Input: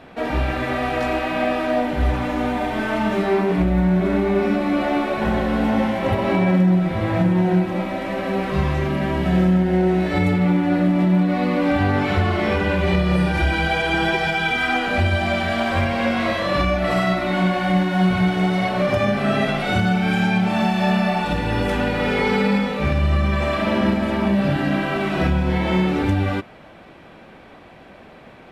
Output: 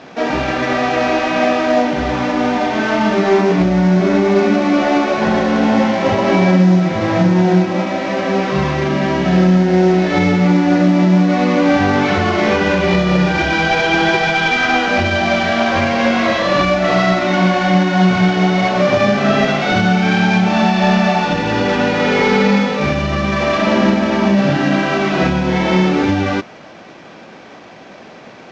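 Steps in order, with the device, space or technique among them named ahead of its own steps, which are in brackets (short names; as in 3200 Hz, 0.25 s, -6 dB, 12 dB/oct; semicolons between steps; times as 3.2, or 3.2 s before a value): early wireless headset (HPF 150 Hz 12 dB/oct; CVSD 32 kbps); gain +7 dB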